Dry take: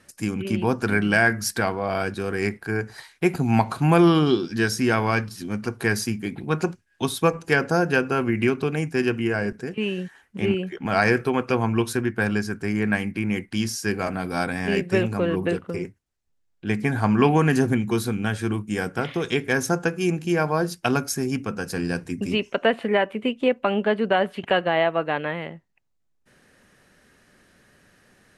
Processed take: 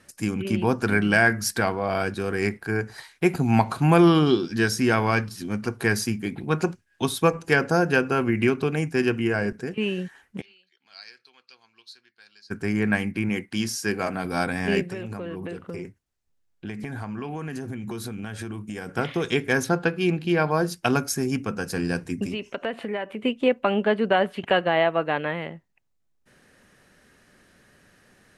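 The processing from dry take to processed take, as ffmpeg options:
ffmpeg -i in.wav -filter_complex "[0:a]asplit=3[link_01][link_02][link_03];[link_01]afade=type=out:start_time=10.4:duration=0.02[link_04];[link_02]bandpass=frequency=4300:width_type=q:width=11,afade=type=in:start_time=10.4:duration=0.02,afade=type=out:start_time=12.5:duration=0.02[link_05];[link_03]afade=type=in:start_time=12.5:duration=0.02[link_06];[link_04][link_05][link_06]amix=inputs=3:normalize=0,asettb=1/sr,asplit=3[link_07][link_08][link_09];[link_07]atrim=end=13.294[link_10];[link_08]atrim=start=13.29:end=14.25,asetpts=PTS-STARTPTS,afade=type=in:duration=0.004:curve=qsin,afade=type=out:start_time=0.956:duration=0.004:curve=qsin,highpass=frequency=150:poles=1[link_11];[link_09]atrim=start=14.246[link_12];[link_10][link_11]acrossfade=duration=0.004:curve1=hsin:curve2=qsin[link_13];[link_13][link_12]acrossfade=duration=0.004:curve1=qsin:curve2=hsin,asettb=1/sr,asplit=3[link_14][link_15][link_16];[link_14]atrim=end=14.914[link_17];[link_15]atrim=start=14.91:end=18.89,asetpts=PTS-STARTPTS,afade=type=in:duration=0.004:curve=qsin,afade=type=out:start_time=3.976:duration=0.004:curve=qsin,acompressor=threshold=-29dB:ratio=10:attack=3.2:release=140:knee=1:detection=peak[link_18];[link_16]atrim=start=18.886[link_19];[link_17][link_18]acrossfade=duration=0.004:curve1=hsin:curve2=qsin[link_20];[link_20][link_19]acrossfade=duration=0.004:curve1=qsin:curve2=hsin,asettb=1/sr,asplit=3[link_21][link_22][link_23];[link_21]atrim=end=19.644[link_24];[link_22]atrim=start=19.64:end=20.51,asetpts=PTS-STARTPTS,afade=type=in:duration=0.004:curve=qsin,afade=type=out:start_time=0.866:duration=0.004:curve=qsin,highshelf=frequency=5100:width_type=q:width=3:gain=-7[link_25];[link_23]atrim=start=20.506[link_26];[link_24][link_25]acrossfade=duration=0.004:curve1=hsin:curve2=qsin[link_27];[link_27][link_26]acrossfade=duration=0.004:curve1=qsin:curve2=hsin,asettb=1/sr,asplit=3[link_28][link_29][link_30];[link_28]atrim=end=22.264[link_31];[link_29]atrim=start=22.26:end=23.22,asetpts=PTS-STARTPTS,afade=type=in:duration=0.004:curve=qsin,afade=type=out:start_time=0.956:duration=0.004:curve=qsin,acompressor=threshold=-29dB:ratio=2.5:attack=3.2:release=140:knee=1:detection=peak[link_32];[link_30]atrim=start=23.216[link_33];[link_31][link_32]acrossfade=duration=0.004:curve1=hsin:curve2=qsin[link_34];[link_34][link_33]acrossfade=duration=0.004:curve1=qsin:curve2=hsin" out.wav

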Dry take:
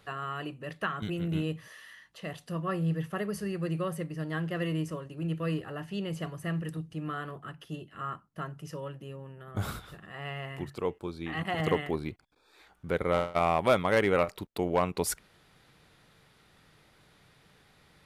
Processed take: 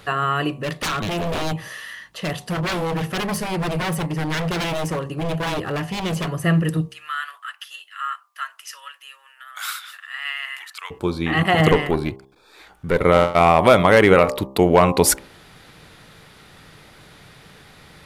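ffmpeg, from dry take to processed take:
ffmpeg -i in.wav -filter_complex "[0:a]asplit=3[link_01][link_02][link_03];[link_01]afade=type=out:start_time=0.49:duration=0.02[link_04];[link_02]aeval=exprs='0.0211*(abs(mod(val(0)/0.0211+3,4)-2)-1)':channel_layout=same,afade=type=in:start_time=0.49:duration=0.02,afade=type=out:start_time=6.31:duration=0.02[link_05];[link_03]afade=type=in:start_time=6.31:duration=0.02[link_06];[link_04][link_05][link_06]amix=inputs=3:normalize=0,asplit=3[link_07][link_08][link_09];[link_07]afade=type=out:start_time=6.87:duration=0.02[link_10];[link_08]highpass=frequency=1400:width=0.5412,highpass=frequency=1400:width=1.3066,afade=type=in:start_time=6.87:duration=0.02,afade=type=out:start_time=10.9:duration=0.02[link_11];[link_09]afade=type=in:start_time=10.9:duration=0.02[link_12];[link_10][link_11][link_12]amix=inputs=3:normalize=0,asettb=1/sr,asplit=3[link_13][link_14][link_15];[link_13]atrim=end=11.714[link_16];[link_14]atrim=start=11.71:end=13.02,asetpts=PTS-STARTPTS,afade=type=in:duration=0.004:curve=qsin,afade=type=out:start_time=1.306:duration=0.004:curve=qsin,aeval=exprs='(tanh(10*val(0)+0.6)-tanh(0.6))/10':channel_layout=same[link_17];[link_15]atrim=start=13.016[link_18];[link_16][link_17]acrossfade=duration=0.004:curve1=hsin:curve2=qsin[link_19];[link_19][link_18]acrossfade=duration=0.004:curve1=qsin:curve2=hsin,bandreject=frequency=66.33:width_type=h:width=4,bandreject=frequency=132.66:width_type=h:width=4,bandreject=frequency=198.99:width_type=h:width=4,bandreject=frequency=265.32:width_type=h:width=4,bandreject=frequency=331.65:width_type=h:width=4,bandreject=frequency=397.98:width_type=h:width=4,bandreject=frequency=464.31:width_type=h:width=4,bandreject=frequency=530.64:width_type=h:width=4,bandreject=frequency=596.97:width_type=h:width=4,bandreject=frequency=663.3:width_type=h:width=4,bandreject=frequency=729.63:width_type=h:width=4,bandreject=frequency=795.96:width_type=h:width=4,bandreject=frequency=862.29:width_type=h:width=4,bandreject=frequency=928.62:width_type=h:width=4,bandreject=frequency=994.95:width_type=h:width=4,bandreject=frequency=1061.28:width_type=h:width=4,bandreject=frequency=1127.61:width_type=h:width=4,bandreject=frequency=1193.94:width_type=h:width=4,alimiter=level_in=16dB:limit=-1dB:release=50:level=0:latency=1,volume=-1dB" out.wav

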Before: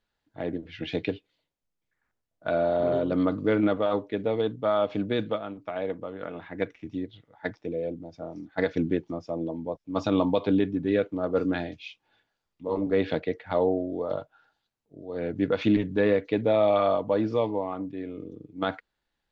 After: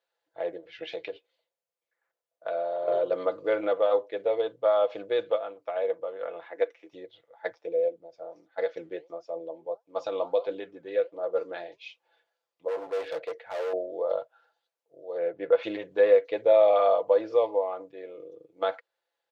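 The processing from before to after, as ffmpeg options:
ffmpeg -i in.wav -filter_complex "[0:a]asettb=1/sr,asplit=3[link_01][link_02][link_03];[link_01]atrim=end=0.934[link_04];[link_02]atrim=start=0.93:end=2.88,asetpts=PTS-STARTPTS,afade=type=in:duration=0.004:curve=qsin,afade=type=out:start_time=1.946:duration=0.004:curve=qsin,acompressor=threshold=-29dB:ratio=3:attack=3.2:release=140:knee=1:detection=peak[link_05];[link_03]atrim=start=2.876[link_06];[link_04][link_05]acrossfade=duration=0.004:curve1=hsin:curve2=qsin[link_07];[link_07][link_06]acrossfade=duration=0.004:curve1=qsin:curve2=hsin,asettb=1/sr,asplit=3[link_08][link_09][link_10];[link_08]atrim=end=6.444[link_11];[link_09]atrim=start=6.44:end=6.93,asetpts=PTS-STARTPTS,afade=type=in:duration=0.004:curve=qsin,afade=type=out:start_time=0.486:duration=0.004:curve=qsin,highpass=frequency=230:width=0.5412,highpass=frequency=230:width=1.3066[link_12];[link_10]atrim=start=6.926[link_13];[link_11][link_12]acrossfade=duration=0.004:curve1=hsin:curve2=qsin[link_14];[link_14][link_13]acrossfade=duration=0.004:curve1=qsin:curve2=hsin,asettb=1/sr,asplit=3[link_15][link_16][link_17];[link_15]atrim=end=7.884[link_18];[link_16]atrim=start=7.88:end=11.81,asetpts=PTS-STARTPTS,afade=type=in:duration=0.004:curve=qsin,afade=type=out:start_time=3.926:duration=0.004:curve=qsin,flanger=delay=2.7:depth=6.9:regen=80:speed=1.5:shape=triangular[link_19];[link_17]atrim=start=11.806[link_20];[link_18][link_19]acrossfade=duration=0.004:curve1=hsin:curve2=qsin[link_21];[link_21][link_20]acrossfade=duration=0.004:curve1=qsin:curve2=hsin,asettb=1/sr,asplit=3[link_22][link_23][link_24];[link_22]atrim=end=12.684[link_25];[link_23]atrim=start=12.68:end=13.73,asetpts=PTS-STARTPTS,afade=type=in:duration=0.004:curve=qsin,afade=type=out:start_time=1.046:duration=0.004:curve=qsin,asoftclip=type=hard:threshold=-30dB[link_26];[link_24]atrim=start=13.726[link_27];[link_25][link_26]acrossfade=duration=0.004:curve1=hsin:curve2=qsin[link_28];[link_28][link_27]acrossfade=duration=0.004:curve1=qsin:curve2=hsin,asplit=3[link_29][link_30][link_31];[link_29]afade=type=out:start_time=15.17:duration=0.02[link_32];[link_30]highpass=110,lowpass=2700,afade=type=in:start_time=15.17:duration=0.02,afade=type=out:start_time=15.62:duration=0.02[link_33];[link_31]afade=type=in:start_time=15.62:duration=0.02[link_34];[link_32][link_33][link_34]amix=inputs=3:normalize=0,highpass=110,lowshelf=frequency=340:width_type=q:width=3:gain=-14,aecho=1:1:5.9:0.44,volume=-4dB" out.wav

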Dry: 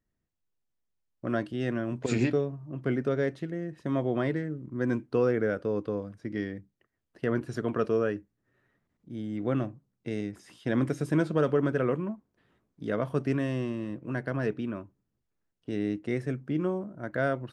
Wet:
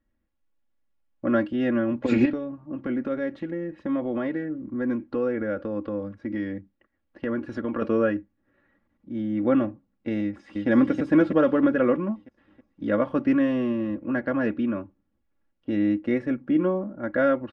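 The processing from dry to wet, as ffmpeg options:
ffmpeg -i in.wav -filter_complex "[0:a]asettb=1/sr,asplit=3[link_01][link_02][link_03];[link_01]atrim=end=2.254[link_04];[link_02]atrim=start=2.25:end=7.82,asetpts=PTS-STARTPTS,afade=type=in:duration=0.004:curve=qsin,afade=type=out:start_time=5.566:duration=0.004:curve=qsin,acompressor=threshold=-33dB:ratio=2:attack=3.2:release=140:knee=1:detection=peak[link_05];[link_03]atrim=start=7.816[link_06];[link_04][link_05]acrossfade=duration=0.004:curve1=hsin:curve2=qsin[link_07];[link_07][link_06]acrossfade=duration=0.004:curve1=qsin:curve2=hsin,asplit=2[link_08][link_09];[link_09]afade=type=in:start_time=10.23:duration=0.01,afade=type=out:start_time=10.68:duration=0.01,aecho=0:1:320|640|960|1280|1600|1920|2240|2560:0.841395|0.462767|0.254522|0.139987|0.0769929|0.0423461|0.0232904|0.0128097[link_10];[link_08][link_10]amix=inputs=2:normalize=0,lowpass=2600,aecho=1:1:3.6:0.81,volume=4.5dB" out.wav

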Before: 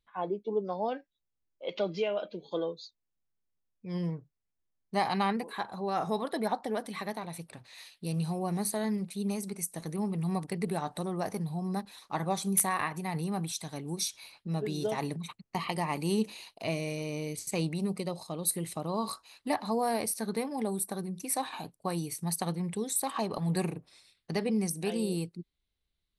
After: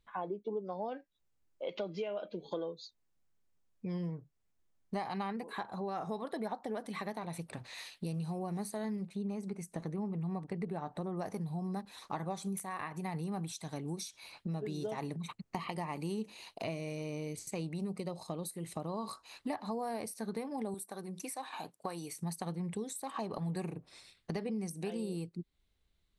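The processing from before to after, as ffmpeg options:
ffmpeg -i in.wav -filter_complex "[0:a]asplit=3[link_01][link_02][link_03];[link_01]afade=type=out:start_time=9.07:duration=0.02[link_04];[link_02]lowpass=frequency=2000:poles=1,afade=type=in:start_time=9.07:duration=0.02,afade=type=out:start_time=11.16:duration=0.02[link_05];[link_03]afade=type=in:start_time=11.16:duration=0.02[link_06];[link_04][link_05][link_06]amix=inputs=3:normalize=0,asettb=1/sr,asplit=3[link_07][link_08][link_09];[link_07]atrim=end=20.744[link_10];[link_08]atrim=start=20.74:end=22.16,asetpts=PTS-STARTPTS,afade=type=in:duration=0.004:curve=qsin,afade=type=out:start_time=1.416:duration=0.004:curve=qsin,highpass=frequency=550:poles=1[link_11];[link_09]atrim=start=22.156[link_12];[link_10][link_11]acrossfade=duration=0.004:curve1=hsin:curve2=qsin[link_13];[link_13][link_12]acrossfade=duration=0.004:curve1=qsin:curve2=hsin,equalizer=frequency=7200:width_type=o:width=0.69:gain=4.5,acompressor=threshold=-45dB:ratio=4,highshelf=frequency=3300:gain=-8.5,volume=7.5dB" out.wav

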